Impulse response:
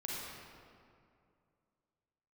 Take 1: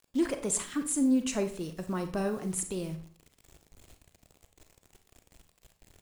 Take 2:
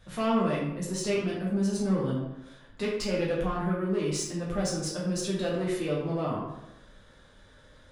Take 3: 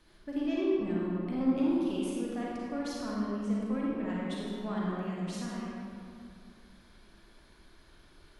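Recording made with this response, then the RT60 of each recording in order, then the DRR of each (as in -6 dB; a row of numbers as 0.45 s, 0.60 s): 3; 0.45 s, 0.90 s, 2.4 s; 7.5 dB, -5.5 dB, -5.5 dB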